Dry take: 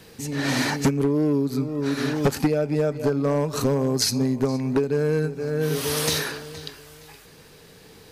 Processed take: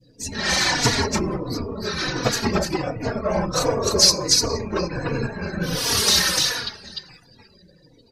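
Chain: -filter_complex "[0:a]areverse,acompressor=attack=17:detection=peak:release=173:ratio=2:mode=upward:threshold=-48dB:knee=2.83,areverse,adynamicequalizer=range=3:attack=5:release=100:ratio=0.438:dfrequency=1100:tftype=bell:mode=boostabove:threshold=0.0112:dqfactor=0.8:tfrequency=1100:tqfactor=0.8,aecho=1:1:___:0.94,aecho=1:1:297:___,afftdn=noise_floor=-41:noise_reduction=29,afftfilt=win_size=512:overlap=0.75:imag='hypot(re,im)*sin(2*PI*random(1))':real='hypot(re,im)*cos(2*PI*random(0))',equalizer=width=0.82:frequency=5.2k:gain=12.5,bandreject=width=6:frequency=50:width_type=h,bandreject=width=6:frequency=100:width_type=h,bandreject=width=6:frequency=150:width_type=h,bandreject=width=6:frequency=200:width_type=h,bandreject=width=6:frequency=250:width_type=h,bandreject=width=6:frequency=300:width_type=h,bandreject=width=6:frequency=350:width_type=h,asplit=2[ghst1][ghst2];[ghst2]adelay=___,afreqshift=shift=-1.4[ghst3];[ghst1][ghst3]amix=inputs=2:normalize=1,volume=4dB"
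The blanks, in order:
5.6, 0.708, 3.5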